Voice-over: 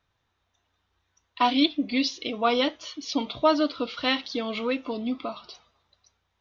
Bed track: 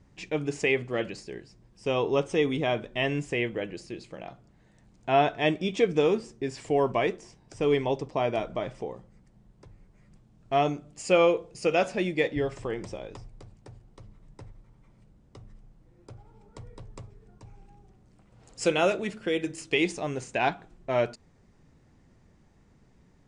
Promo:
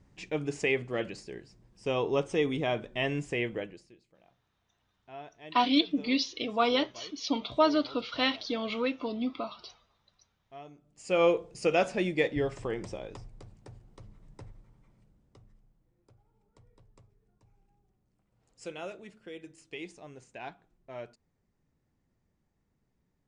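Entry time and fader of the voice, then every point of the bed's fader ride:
4.15 s, -3.0 dB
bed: 3.59 s -3 dB
4.01 s -23 dB
10.68 s -23 dB
11.27 s -1.5 dB
14.51 s -1.5 dB
16.15 s -16.5 dB

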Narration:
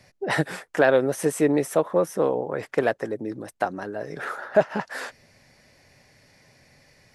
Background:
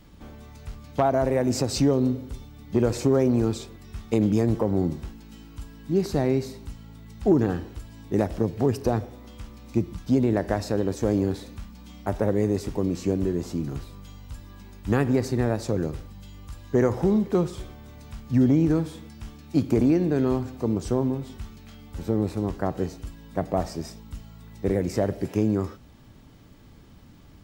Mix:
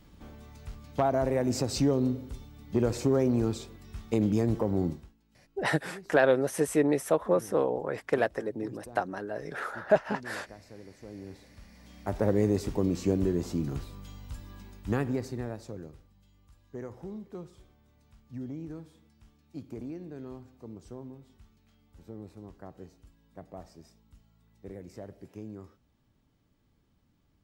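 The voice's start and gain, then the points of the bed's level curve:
5.35 s, -4.0 dB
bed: 4.9 s -4.5 dB
5.16 s -23.5 dB
11 s -23.5 dB
12.29 s -2 dB
14.56 s -2 dB
16.08 s -19.5 dB

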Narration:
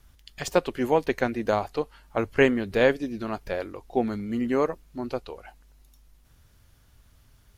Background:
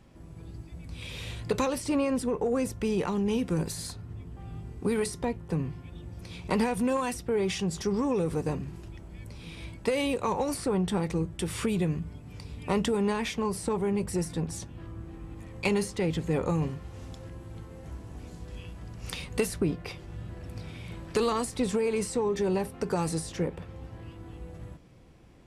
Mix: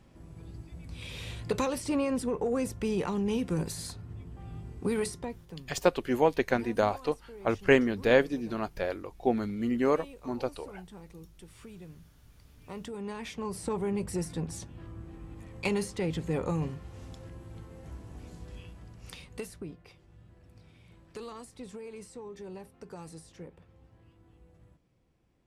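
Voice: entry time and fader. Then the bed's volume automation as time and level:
5.30 s, -2.0 dB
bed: 5.07 s -2 dB
5.74 s -20 dB
12.34 s -20 dB
13.71 s -3 dB
18.47 s -3 dB
19.85 s -16 dB

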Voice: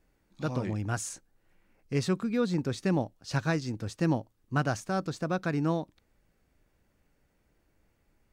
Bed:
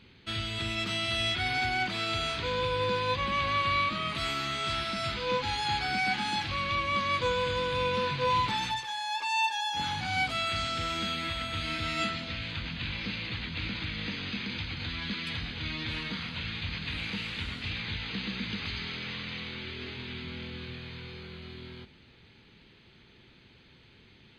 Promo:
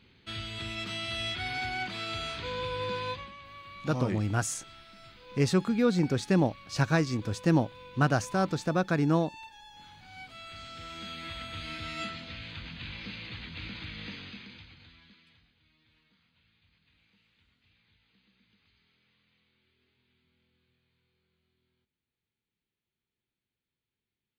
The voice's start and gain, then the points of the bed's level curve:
3.45 s, +3.0 dB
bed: 3.08 s -4.5 dB
3.37 s -20 dB
9.98 s -20 dB
11.36 s -6 dB
14.13 s -6 dB
15.64 s -34 dB

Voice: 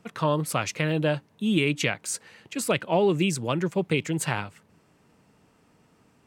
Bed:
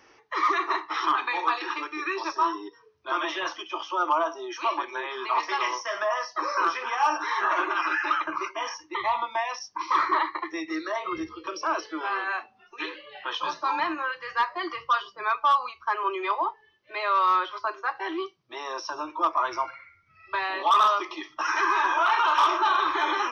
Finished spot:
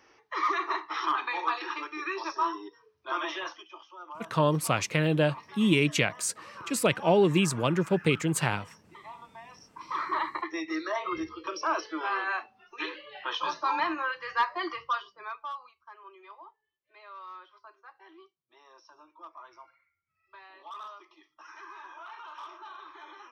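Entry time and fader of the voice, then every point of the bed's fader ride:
4.15 s, 0.0 dB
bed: 3.36 s -4 dB
3.92 s -20 dB
9.42 s -20 dB
10.39 s -1.5 dB
14.68 s -1.5 dB
15.84 s -23 dB

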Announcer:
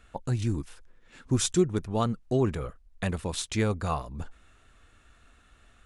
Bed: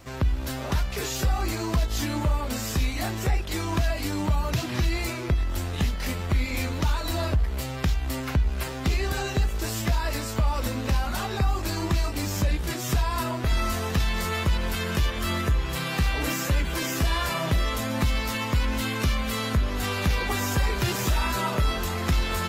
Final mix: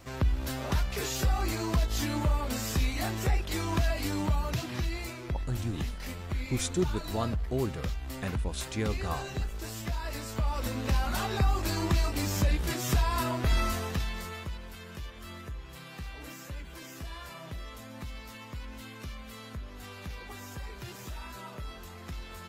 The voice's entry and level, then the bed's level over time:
5.20 s, -5.5 dB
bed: 4.17 s -3 dB
5.14 s -9.5 dB
9.91 s -9.5 dB
11.13 s -2 dB
13.59 s -2 dB
14.67 s -17 dB

